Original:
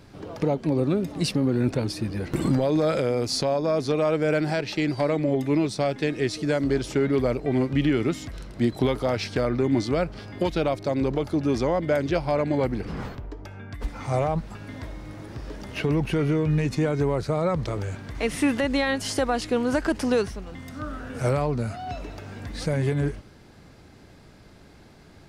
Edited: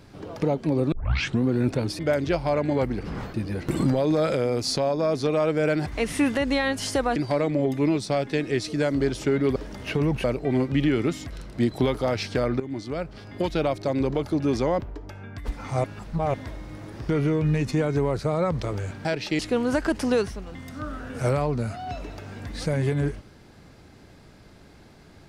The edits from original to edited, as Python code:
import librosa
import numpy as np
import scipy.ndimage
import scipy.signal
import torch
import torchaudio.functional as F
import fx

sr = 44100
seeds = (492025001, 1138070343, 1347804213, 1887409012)

y = fx.edit(x, sr, fx.tape_start(start_s=0.92, length_s=0.54),
    fx.swap(start_s=4.51, length_s=0.34, other_s=18.09, other_length_s=1.3),
    fx.fade_in_from(start_s=9.61, length_s=1.01, floor_db=-13.5),
    fx.move(start_s=11.81, length_s=1.35, to_s=1.99),
    fx.reverse_span(start_s=14.2, length_s=0.5),
    fx.move(start_s=15.45, length_s=0.68, to_s=7.25), tone=tone)